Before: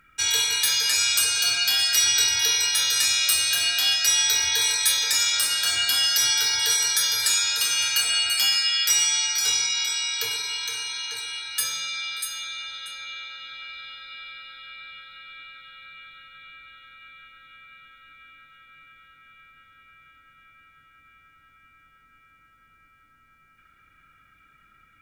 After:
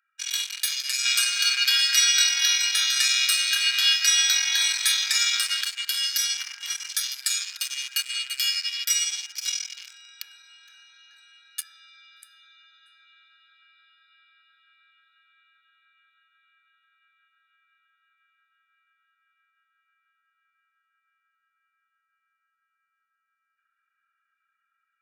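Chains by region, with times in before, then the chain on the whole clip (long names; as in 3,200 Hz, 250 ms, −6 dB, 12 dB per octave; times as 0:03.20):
0:01.05–0:05.64: drawn EQ curve 220 Hz 0 dB, 530 Hz +9 dB, 5,700 Hz +2 dB, 16,000 Hz −5 dB + slack as between gear wheels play −36 dBFS
0:06.37–0:06.89: high-shelf EQ 4,100 Hz −9 dB + comb filter 3.8 ms, depth 98%
whole clip: adaptive Wiener filter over 41 samples; inverse Chebyshev high-pass filter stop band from 230 Hz, stop band 80 dB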